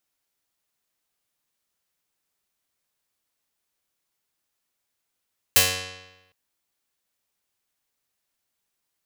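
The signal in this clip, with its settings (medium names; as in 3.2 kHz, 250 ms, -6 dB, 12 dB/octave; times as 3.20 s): plucked string F#2, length 0.76 s, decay 1.04 s, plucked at 0.29, medium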